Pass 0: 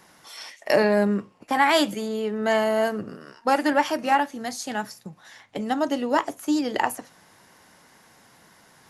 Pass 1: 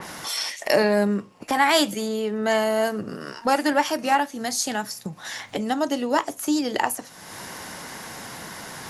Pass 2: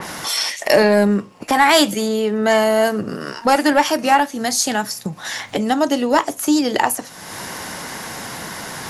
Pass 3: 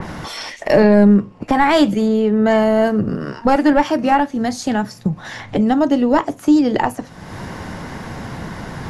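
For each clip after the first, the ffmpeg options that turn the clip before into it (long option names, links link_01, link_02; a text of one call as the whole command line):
ffmpeg -i in.wav -af "acompressor=mode=upward:threshold=-22dB:ratio=2.5,adynamicequalizer=threshold=0.01:dfrequency=3600:dqfactor=0.7:tfrequency=3600:tqfactor=0.7:attack=5:release=100:ratio=0.375:range=3:mode=boostabove:tftype=highshelf" out.wav
ffmpeg -i in.wav -af "acontrast=83" out.wav
ffmpeg -i in.wav -af "aemphasis=mode=reproduction:type=riaa,volume=-1.5dB" out.wav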